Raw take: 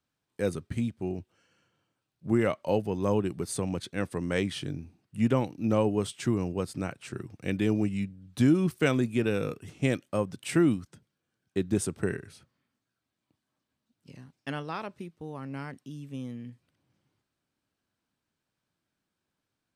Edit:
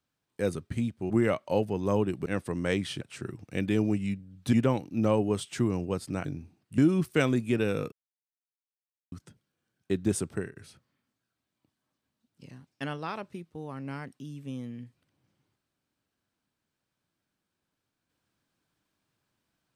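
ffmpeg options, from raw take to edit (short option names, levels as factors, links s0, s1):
-filter_complex "[0:a]asplit=10[s0][s1][s2][s3][s4][s5][s6][s7][s8][s9];[s0]atrim=end=1.102[s10];[s1]atrim=start=2.268:end=3.432[s11];[s2]atrim=start=3.918:end=4.672[s12];[s3]atrim=start=6.918:end=8.442[s13];[s4]atrim=start=5.198:end=6.922[s14];[s5]atrim=start=4.668:end=5.202[s15];[s6]atrim=start=8.438:end=9.58,asetpts=PTS-STARTPTS,afade=t=out:st=1.138:d=0.004:c=hsin[s16];[s7]atrim=start=9.58:end=10.78,asetpts=PTS-STARTPTS,volume=0[s17];[s8]atrim=start=10.78:end=12.22,asetpts=PTS-STARTPTS,afade=t=in:d=0.004:c=hsin,afade=t=out:st=1.16:d=0.28:silence=0.133352[s18];[s9]atrim=start=12.22,asetpts=PTS-STARTPTS,afade=t=in:d=0.004:c=hsin:silence=0.133352[s19];[s10][s11]acrossfade=d=0.004:c1=hsin:c2=hsin[s20];[s20][s12]acrossfade=d=0.004:c1=hsin:c2=hsin[s21];[s21][s13]acrossfade=d=0.004:c1=hsin:c2=hsin[s22];[s22][s14]acrossfade=d=0.004:c1=hsin:c2=hsin[s23];[s23][s15]acrossfade=d=0.004:c1=hsin:c2=hsin[s24];[s16][s17][s18][s19]concat=n=4:v=0:a=1[s25];[s24][s25]acrossfade=d=0.004:c1=hsin:c2=hsin"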